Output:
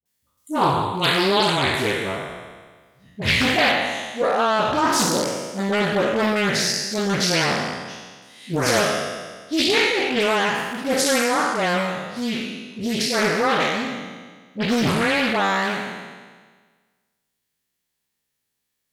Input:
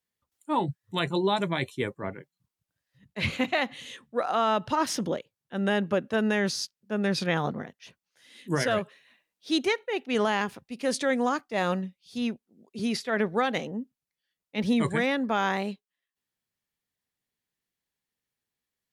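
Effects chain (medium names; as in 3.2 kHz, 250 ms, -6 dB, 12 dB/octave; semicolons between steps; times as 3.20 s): spectral sustain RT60 1.53 s; treble shelf 3.7 kHz +11 dB, from 3.66 s +5.5 dB; phase dispersion highs, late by 57 ms, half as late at 530 Hz; loudspeaker Doppler distortion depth 0.53 ms; trim +3 dB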